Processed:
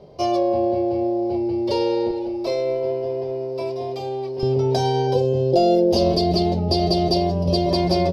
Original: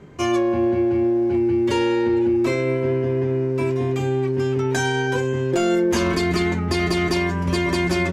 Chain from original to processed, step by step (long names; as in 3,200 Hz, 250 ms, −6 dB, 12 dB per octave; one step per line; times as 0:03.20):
drawn EQ curve 180 Hz 0 dB, 280 Hz −5 dB, 620 Hz +14 dB, 1,600 Hz −16 dB, 3,500 Hz +1 dB, 5,000 Hz +12 dB, 7,000 Hz −14 dB, 11,000 Hz −3 dB
0:05.14–0:07.72: gain on a spectral selection 880–2,500 Hz −7 dB
parametric band 130 Hz −2.5 dB 2.9 octaves, from 0:02.11 −11.5 dB, from 0:04.43 +4.5 dB
level −2.5 dB